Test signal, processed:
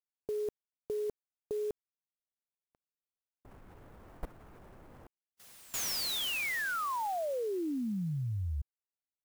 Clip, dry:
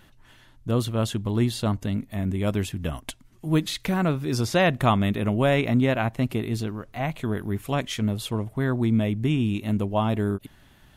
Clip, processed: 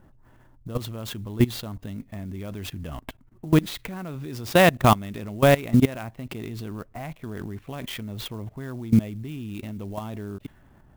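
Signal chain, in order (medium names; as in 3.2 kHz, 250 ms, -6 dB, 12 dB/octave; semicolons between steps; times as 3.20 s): level-controlled noise filter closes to 930 Hz, open at -19 dBFS; level held to a coarse grid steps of 20 dB; sampling jitter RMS 0.025 ms; trim +6 dB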